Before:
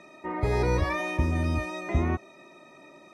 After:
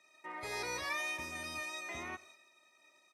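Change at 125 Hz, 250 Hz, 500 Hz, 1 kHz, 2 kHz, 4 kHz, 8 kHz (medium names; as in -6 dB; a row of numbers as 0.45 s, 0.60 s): -30.0 dB, -21.0 dB, -16.5 dB, -10.0 dB, -4.5 dB, 0.0 dB, +2.0 dB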